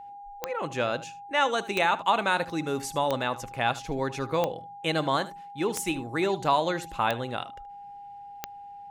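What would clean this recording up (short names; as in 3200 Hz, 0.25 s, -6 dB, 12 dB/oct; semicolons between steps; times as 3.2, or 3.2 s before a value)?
de-click; notch 810 Hz, Q 30; inverse comb 76 ms -17 dB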